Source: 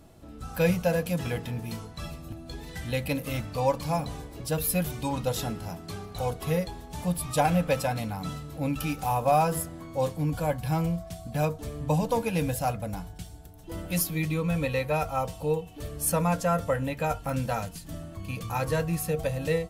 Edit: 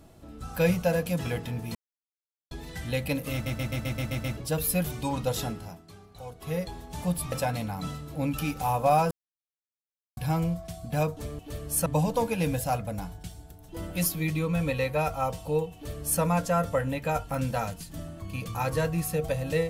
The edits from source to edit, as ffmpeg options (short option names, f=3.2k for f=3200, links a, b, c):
-filter_complex "[0:a]asplit=18[a][b][c][d][e][f][g][h][i][j][k][l][m][n][o][p][q][r];[a]atrim=end=1.75,asetpts=PTS-STARTPTS,afade=t=out:st=1.746:d=0.004:c=hsin[s];[b]atrim=start=1.75:end=2.51,asetpts=PTS-STARTPTS,volume=0[t];[c]atrim=start=2.51:end=3.462,asetpts=PTS-STARTPTS,afade=t=in:d=0.004:c=hsin[u];[d]atrim=start=3.328:end=3.462[v];[e]atrim=start=3.328:end=3.462[w];[f]atrim=start=3.328:end=3.462[x];[g]atrim=start=3.328:end=3.462[y];[h]atrim=start=3.328:end=3.462[z];[i]atrim=start=3.328:end=3.462[aa];[j]atrim=start=3.328:end=3.462[ab];[k]atrim=start=4.368:end=5.85,asetpts=PTS-STARTPTS,afade=t=out:st=1.072:d=0.41:silence=0.251189[ac];[l]atrim=start=5.85:end=6.34,asetpts=PTS-STARTPTS,volume=-12dB[ad];[m]atrim=start=6.34:end=7.322,asetpts=PTS-STARTPTS,afade=t=in:d=0.41:silence=0.251189[ae];[n]atrim=start=7.738:end=9.53,asetpts=PTS-STARTPTS,afade=t=out:st=1.788:d=0.004:c=hsin[af];[o]atrim=start=9.53:end=10.59,asetpts=PTS-STARTPTS,volume=0[ag];[p]atrim=start=10.59:end=11.812,asetpts=PTS-STARTPTS,afade=t=in:d=0.004:c=hsin[ah];[q]atrim=start=15.688:end=16.162[ai];[r]atrim=start=11.808[aj];[s][t][u]concat=n=3:v=0:a=1[ak];[ak][v]acrossfade=d=0.004:c1=hsin:c2=hsin[al];[al][w]acrossfade=d=0.004:c1=hsin:c2=hsin[am];[am][x]acrossfade=d=0.004:c1=hsin:c2=hsin[an];[an][y]acrossfade=d=0.004:c1=hsin:c2=hsin[ao];[ao][z]acrossfade=d=0.004:c1=hsin:c2=hsin[ap];[ap][aa]acrossfade=d=0.004:c1=hsin:c2=hsin[aq];[aq][ab]acrossfade=d=0.004:c1=hsin:c2=hsin[ar];[ac][ad][ae]concat=n=3:v=0:a=1[as];[ar][as]acrossfade=d=0.004:c1=hsin:c2=hsin[at];[af][ag][ah]concat=n=3:v=0:a=1[au];[at][au]acrossfade=d=0.004:c1=hsin:c2=hsin[av];[av][ai]acrossfade=d=0.004:c1=hsin:c2=hsin[aw];[aw][aj]acrossfade=d=0.004:c1=hsin:c2=hsin"